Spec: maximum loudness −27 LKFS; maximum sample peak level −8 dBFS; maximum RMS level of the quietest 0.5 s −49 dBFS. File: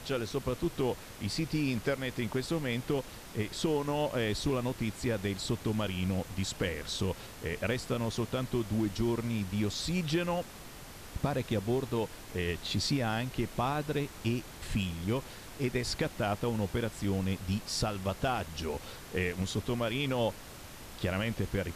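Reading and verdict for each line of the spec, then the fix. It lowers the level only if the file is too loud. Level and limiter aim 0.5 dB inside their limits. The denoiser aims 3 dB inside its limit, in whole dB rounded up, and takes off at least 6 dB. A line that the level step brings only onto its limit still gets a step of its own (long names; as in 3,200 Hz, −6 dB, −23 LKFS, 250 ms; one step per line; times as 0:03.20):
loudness −33.5 LKFS: in spec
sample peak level −17.5 dBFS: in spec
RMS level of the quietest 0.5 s −47 dBFS: out of spec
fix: broadband denoise 6 dB, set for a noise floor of −47 dBFS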